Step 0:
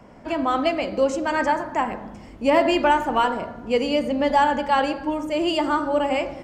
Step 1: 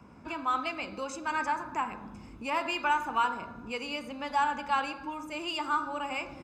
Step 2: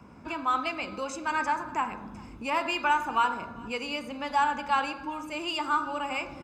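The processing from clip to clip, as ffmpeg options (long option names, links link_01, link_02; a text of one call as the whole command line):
ffmpeg -i in.wav -filter_complex "[0:a]highpass=46,aecho=1:1:0.8:0.58,acrossover=split=650|3300[link_01][link_02][link_03];[link_01]acompressor=threshold=-34dB:ratio=10[link_04];[link_04][link_02][link_03]amix=inputs=3:normalize=0,volume=-7dB" out.wav
ffmpeg -i in.wav -af "aecho=1:1:401:0.0668,volume=2.5dB" out.wav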